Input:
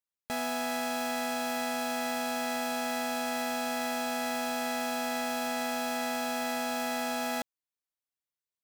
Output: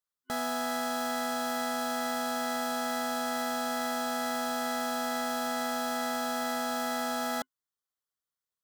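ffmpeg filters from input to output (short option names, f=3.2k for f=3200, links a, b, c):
-af "superequalizer=6b=0.631:10b=1.78:12b=0.316"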